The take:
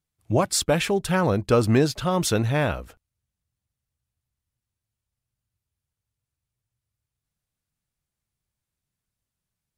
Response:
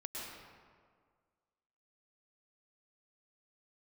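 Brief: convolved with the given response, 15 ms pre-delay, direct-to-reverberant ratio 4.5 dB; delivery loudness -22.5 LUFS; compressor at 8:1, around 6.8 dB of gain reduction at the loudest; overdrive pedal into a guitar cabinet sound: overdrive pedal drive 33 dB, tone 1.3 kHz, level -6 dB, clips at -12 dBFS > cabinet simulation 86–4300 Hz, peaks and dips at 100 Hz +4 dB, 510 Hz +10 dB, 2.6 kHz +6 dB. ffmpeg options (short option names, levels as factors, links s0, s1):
-filter_complex "[0:a]acompressor=threshold=0.0891:ratio=8,asplit=2[s0][s1];[1:a]atrim=start_sample=2205,adelay=15[s2];[s1][s2]afir=irnorm=-1:irlink=0,volume=0.596[s3];[s0][s3]amix=inputs=2:normalize=0,asplit=2[s4][s5];[s5]highpass=f=720:p=1,volume=44.7,asoftclip=type=tanh:threshold=0.251[s6];[s4][s6]amix=inputs=2:normalize=0,lowpass=f=1300:p=1,volume=0.501,highpass=86,equalizer=f=100:t=q:w=4:g=4,equalizer=f=510:t=q:w=4:g=10,equalizer=f=2600:t=q:w=4:g=6,lowpass=f=4300:w=0.5412,lowpass=f=4300:w=1.3066,volume=0.596"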